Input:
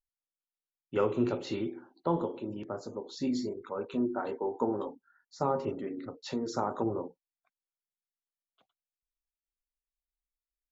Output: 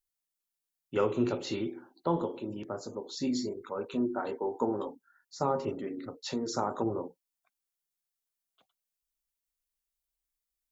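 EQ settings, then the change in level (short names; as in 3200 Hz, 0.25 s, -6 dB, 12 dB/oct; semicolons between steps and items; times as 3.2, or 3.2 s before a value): high shelf 5000 Hz +9.5 dB; 0.0 dB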